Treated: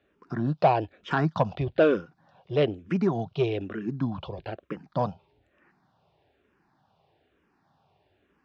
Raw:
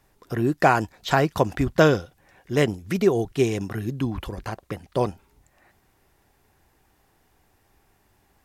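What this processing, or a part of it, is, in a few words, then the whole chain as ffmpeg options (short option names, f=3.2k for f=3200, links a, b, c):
barber-pole phaser into a guitar amplifier: -filter_complex "[0:a]asplit=2[a][b];[b]afreqshift=-1.1[c];[a][c]amix=inputs=2:normalize=1,asoftclip=type=tanh:threshold=-14dB,highpass=110,equalizer=f=160:t=q:w=4:g=5,equalizer=f=620:t=q:w=4:g=4,equalizer=f=2k:t=q:w=4:g=-7,lowpass=f=4k:w=0.5412,lowpass=f=4k:w=1.3066"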